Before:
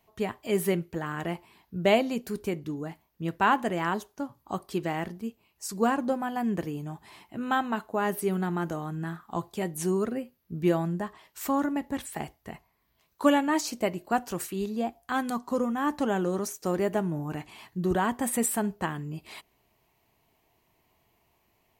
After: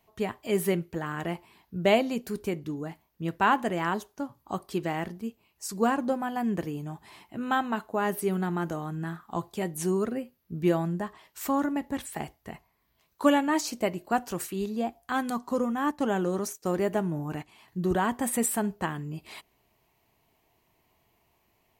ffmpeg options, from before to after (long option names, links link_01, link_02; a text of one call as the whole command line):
ffmpeg -i in.wav -filter_complex "[0:a]asettb=1/sr,asplit=3[link_01][link_02][link_03];[link_01]atrim=end=15.914[link_04];[link_02]atrim=start=15.91:end=17.68,asetpts=PTS-STARTPTS,afade=type=in:duration=0.004:curve=qsin,afade=type=out:start_time=1.766:duration=0.004:curve=qsin,agate=range=-8dB:threshold=-40dB:ratio=16:release=100:detection=peak[link_05];[link_03]atrim=start=17.676[link_06];[link_04][link_05]acrossfade=duration=0.004:curve1=hsin:curve2=qsin[link_07];[link_07][link_06]acrossfade=duration=0.004:curve1=qsin:curve2=hsin" out.wav